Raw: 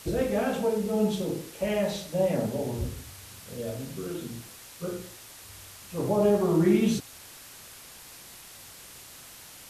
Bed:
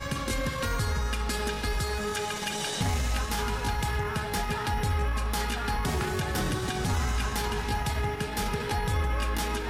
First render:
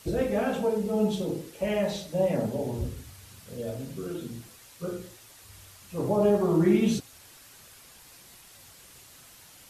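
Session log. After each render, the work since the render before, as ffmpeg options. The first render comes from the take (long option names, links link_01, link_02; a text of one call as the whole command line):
ffmpeg -i in.wav -af "afftdn=noise_reduction=6:noise_floor=-48" out.wav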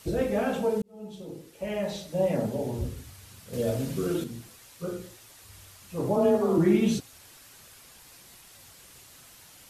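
ffmpeg -i in.wav -filter_complex "[0:a]asettb=1/sr,asplit=3[link_01][link_02][link_03];[link_01]atrim=end=3.534[link_04];[link_02]atrim=start=3.53:end=4.24,asetpts=PTS-STARTPTS,afade=type=in:duration=0.004:curve=qsin,afade=type=out:start_time=0.706:duration=0.004:curve=qsin,acontrast=71[link_05];[link_03]atrim=start=4.236[link_06];[link_04][link_05]acrossfade=duration=0.004:curve1=hsin:curve2=qsin[link_07];[link_07][link_06]acrossfade=duration=0.004:curve1=qsin:curve2=hsin,asettb=1/sr,asplit=3[link_08][link_09][link_10];[link_08]atrim=end=6.164[link_11];[link_09]atrim=start=6.16:end=6.58,asetpts=PTS-STARTPTS,afade=type=in:duration=0.004:curve=qsin,afade=type=out:start_time=0.416:duration=0.004:curve=qsin,afreqshift=31[link_12];[link_10]atrim=start=6.576[link_13];[link_11][link_12]acrossfade=duration=0.004:curve1=hsin:curve2=qsin[link_14];[link_14][link_13]acrossfade=duration=0.004:curve1=qsin:curve2=hsin,asplit=2[link_15][link_16];[link_15]atrim=end=0.82,asetpts=PTS-STARTPTS,afade=type=out:start_time=0.816:duration=0.004:curve=hsin[link_17];[link_16]atrim=start=0.82,asetpts=PTS-STARTPTS,afade=type=in:duration=1.46[link_18];[link_17][link_18]concat=n=2:v=0:a=1" out.wav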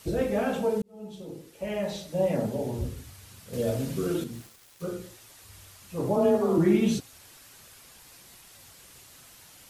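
ffmpeg -i in.wav -filter_complex "[0:a]asettb=1/sr,asplit=3[link_01][link_02][link_03];[link_01]atrim=end=4.334[link_04];[link_02]atrim=start=4.33:end=4.86,asetpts=PTS-STARTPTS,afade=type=in:duration=0.004:curve=qsin,afade=type=out:start_time=0.526:duration=0.004:curve=qsin,aeval=exprs='val(0)*gte(abs(val(0)),0.00422)':channel_layout=same[link_05];[link_03]atrim=start=4.856[link_06];[link_04][link_05]acrossfade=duration=0.004:curve1=hsin:curve2=qsin[link_07];[link_07][link_06]acrossfade=duration=0.004:curve1=qsin:curve2=hsin" out.wav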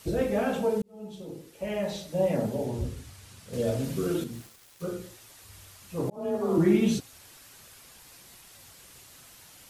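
ffmpeg -i in.wav -filter_complex "[0:a]asettb=1/sr,asplit=3[link_01][link_02][link_03];[link_01]atrim=end=2.654[link_04];[link_02]atrim=start=2.65:end=3.84,asetpts=PTS-STARTPTS,afade=type=in:duration=0.004:curve=qsin,afade=type=out:start_time=1.186:duration=0.004:curve=qsin,lowpass=11000[link_05];[link_03]atrim=start=3.836[link_06];[link_04][link_05]acrossfade=duration=0.004:curve1=hsin:curve2=qsin[link_07];[link_07][link_06]acrossfade=duration=0.004:curve1=qsin:curve2=hsin,asplit=2[link_08][link_09];[link_08]atrim=end=6.1,asetpts=PTS-STARTPTS,afade=type=out:start_time=6.096:duration=0.004:curve=hsin[link_10];[link_09]atrim=start=6.1,asetpts=PTS-STARTPTS,afade=type=in:duration=0.5[link_11];[link_10][link_11]concat=n=2:v=0:a=1" out.wav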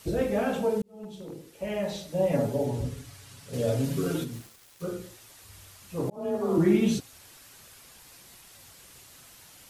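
ffmpeg -i in.wav -filter_complex "[0:a]asettb=1/sr,asplit=3[link_01][link_02][link_03];[link_01]atrim=end=0.914[link_04];[link_02]atrim=start=0.91:end=1.48,asetpts=PTS-STARTPTS,afade=type=in:duration=0.004:curve=qsin,afade=type=out:start_time=0.566:duration=0.004:curve=qsin,aeval=exprs='0.0224*(abs(mod(val(0)/0.0224+3,4)-2)-1)':channel_layout=same[link_05];[link_03]atrim=start=1.476[link_06];[link_04][link_05]acrossfade=duration=0.004:curve1=hsin:curve2=qsin[link_07];[link_07][link_06]acrossfade=duration=0.004:curve1=qsin:curve2=hsin,asettb=1/sr,asplit=3[link_08][link_09][link_10];[link_08]atrim=end=2.314[link_11];[link_09]atrim=start=2.31:end=4.39,asetpts=PTS-STARTPTS,afade=type=in:duration=0.004:curve=qsin,afade=type=out:start_time=2.076:duration=0.004:curve=qsin,aecho=1:1:7.1:0.65,atrim=end_sample=91728[link_12];[link_10]atrim=start=4.386[link_13];[link_11][link_12]acrossfade=duration=0.004:curve1=hsin:curve2=qsin[link_14];[link_14][link_13]acrossfade=duration=0.004:curve1=qsin:curve2=hsin" out.wav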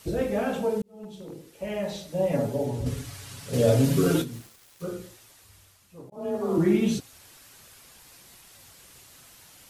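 ffmpeg -i in.wav -filter_complex "[0:a]asettb=1/sr,asplit=3[link_01][link_02][link_03];[link_01]atrim=end=2.864[link_04];[link_02]atrim=start=2.86:end=4.22,asetpts=PTS-STARTPTS,afade=type=in:duration=0.004:curve=qsin,afade=type=out:start_time=1.356:duration=0.004:curve=qsin,acontrast=74[link_05];[link_03]atrim=start=4.216[link_06];[link_04][link_05]acrossfade=duration=0.004:curve1=hsin:curve2=qsin[link_07];[link_07][link_06]acrossfade=duration=0.004:curve1=qsin:curve2=hsin,asplit=2[link_08][link_09];[link_08]atrim=end=6.12,asetpts=PTS-STARTPTS,afade=type=out:start_time=5.01:duration=1.11:silence=0.105925[link_10];[link_09]atrim=start=6.12,asetpts=PTS-STARTPTS,afade=type=in:duration=0.004:curve=hsin:silence=0.105925[link_11];[link_10][link_11]concat=n=2:v=0:a=1" out.wav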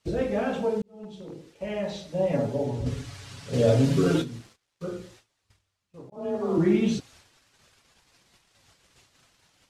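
ffmpeg -i in.wav -af "lowpass=6100,agate=range=-19dB:threshold=-53dB:ratio=16:detection=peak" out.wav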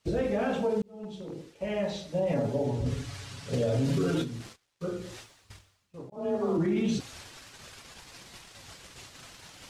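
ffmpeg -i in.wav -af "areverse,acompressor=mode=upward:threshold=-36dB:ratio=2.5,areverse,alimiter=limit=-20dB:level=0:latency=1:release=37" out.wav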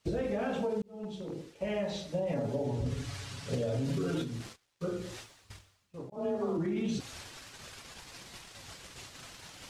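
ffmpeg -i in.wav -af "acompressor=threshold=-29dB:ratio=6" out.wav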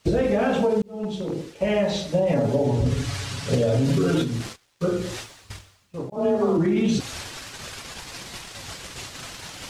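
ffmpeg -i in.wav -af "volume=11.5dB" out.wav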